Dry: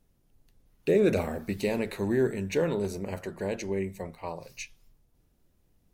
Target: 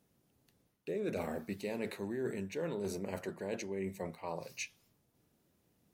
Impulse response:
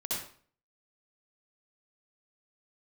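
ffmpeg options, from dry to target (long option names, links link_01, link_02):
-af "highpass=130,areverse,acompressor=threshold=-35dB:ratio=6,areverse"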